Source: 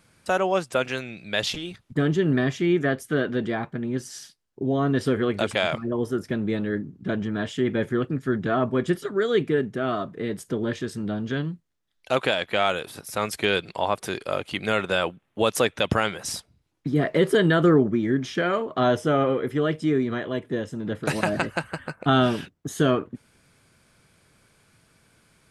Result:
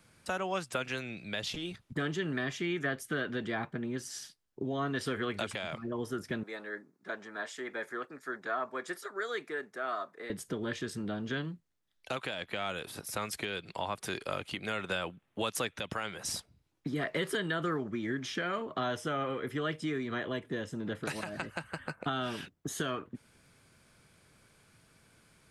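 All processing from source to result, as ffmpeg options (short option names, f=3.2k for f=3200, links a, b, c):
-filter_complex "[0:a]asettb=1/sr,asplit=3[a][b][c];[a]atrim=end=6.434[d];[b]atrim=start=6.43:end=10.3,asetpts=PTS-STARTPTS,afade=t=in:d=0.004:c=qsin,afade=t=out:st=3.866:d=0.004:c=qsin,highpass=780,equalizer=f=3k:t=o:w=0.49:g=-12[e];[c]atrim=start=10.296[f];[d][e]acrossfade=d=0.004:c1=hsin:c2=qsin[g];[g][f]acrossfade=d=0.004:c1=qsin:c2=hsin,acrossover=split=290|900[h][i][j];[h]acompressor=threshold=-36dB:ratio=4[k];[i]acompressor=threshold=-36dB:ratio=4[l];[j]acompressor=threshold=-28dB:ratio=4[m];[k][l][m]amix=inputs=3:normalize=0,alimiter=limit=-18.5dB:level=0:latency=1:release=439,volume=-3dB"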